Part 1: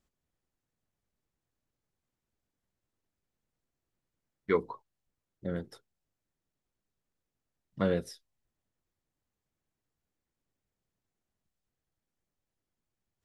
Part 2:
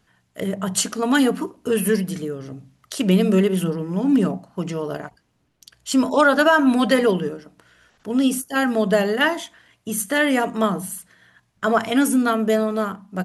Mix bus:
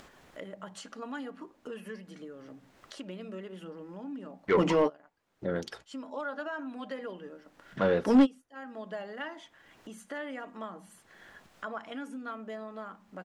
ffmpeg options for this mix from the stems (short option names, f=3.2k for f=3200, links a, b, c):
-filter_complex "[0:a]volume=-2.5dB,asplit=2[a][b];[1:a]lowpass=8.4k,aecho=1:1:3.6:0.38,volume=-2.5dB[c];[b]apad=whole_len=584209[d];[c][d]sidechaingate=range=-33dB:threshold=-59dB:ratio=16:detection=peak[e];[a][e]amix=inputs=2:normalize=0,acompressor=mode=upward:threshold=-38dB:ratio=2.5,asplit=2[f][g];[g]highpass=f=720:p=1,volume=19dB,asoftclip=type=tanh:threshold=-13dB[h];[f][h]amix=inputs=2:normalize=0,lowpass=f=1.5k:p=1,volume=-6dB"